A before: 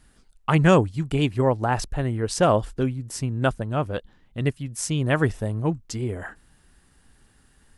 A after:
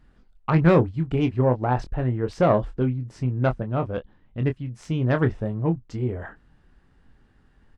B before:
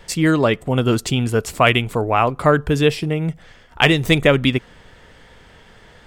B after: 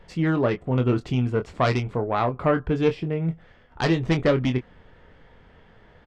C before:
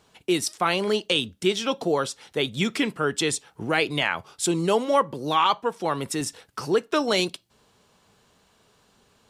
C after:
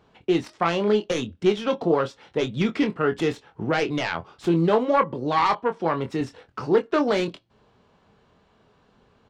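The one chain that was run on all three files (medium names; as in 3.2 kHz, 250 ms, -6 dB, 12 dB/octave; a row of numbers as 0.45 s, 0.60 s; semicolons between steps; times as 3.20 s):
self-modulated delay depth 0.13 ms; tape spacing loss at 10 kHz 28 dB; doubling 24 ms -8 dB; normalise loudness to -24 LUFS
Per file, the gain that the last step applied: +0.5 dB, -4.5 dB, +3.5 dB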